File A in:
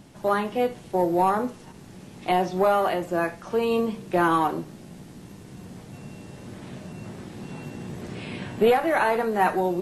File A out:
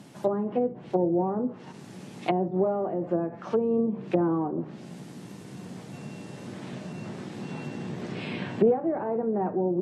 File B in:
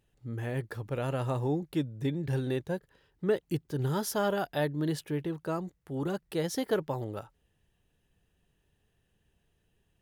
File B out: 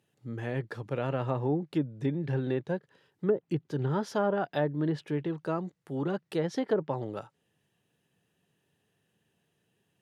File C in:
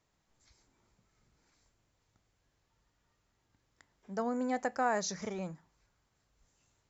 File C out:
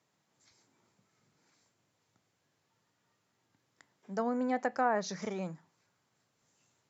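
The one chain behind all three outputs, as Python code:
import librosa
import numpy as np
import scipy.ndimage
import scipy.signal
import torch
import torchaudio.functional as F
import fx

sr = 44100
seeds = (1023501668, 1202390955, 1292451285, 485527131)

y = fx.env_lowpass_down(x, sr, base_hz=410.0, full_db=-21.0)
y = scipy.signal.sosfilt(scipy.signal.butter(4, 120.0, 'highpass', fs=sr, output='sos'), y)
y = y * 10.0 ** (1.5 / 20.0)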